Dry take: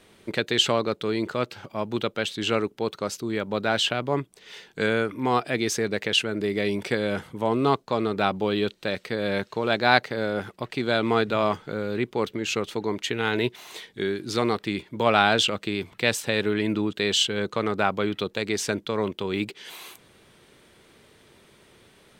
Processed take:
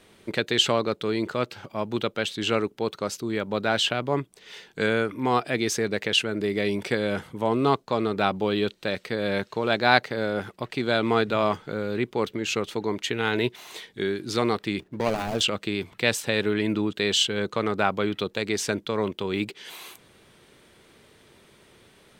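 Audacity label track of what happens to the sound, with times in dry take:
14.800000	15.410000	running median over 41 samples

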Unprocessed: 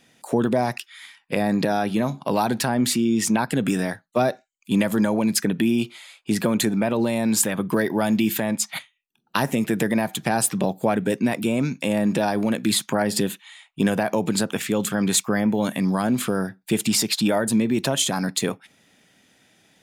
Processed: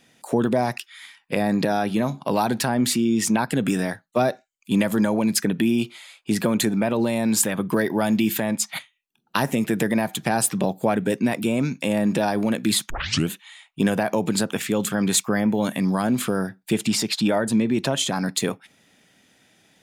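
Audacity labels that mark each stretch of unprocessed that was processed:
12.900000	12.900000	tape start 0.40 s
16.730000	18.260000	high-shelf EQ 9,300 Hz −11 dB

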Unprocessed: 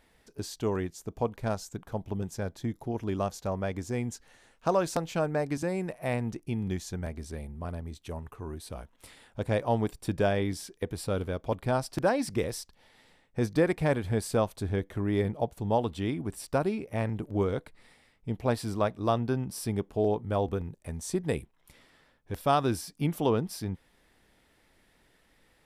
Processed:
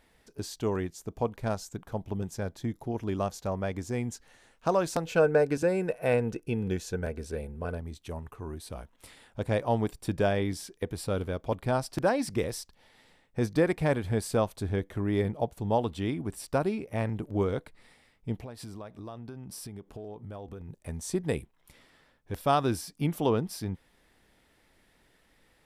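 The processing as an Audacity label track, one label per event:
5.060000	7.780000	hollow resonant body resonances 470/1,500/2,600 Hz, height 13 dB, ringing for 35 ms
18.430000	20.690000	downward compressor 8 to 1, threshold −38 dBFS

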